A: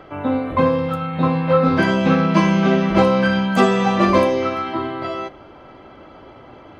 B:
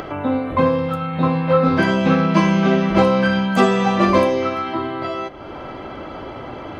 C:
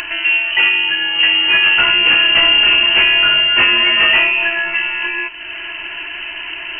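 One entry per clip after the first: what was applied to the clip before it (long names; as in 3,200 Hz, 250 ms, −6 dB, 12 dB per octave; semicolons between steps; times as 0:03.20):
upward compression, threshold −21 dBFS
parametric band 660 Hz −8.5 dB 0.96 octaves; in parallel at −5 dB: sine wavefolder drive 9 dB, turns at −3.5 dBFS; on the sum: voice inversion scrambler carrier 3,000 Hz; level −3 dB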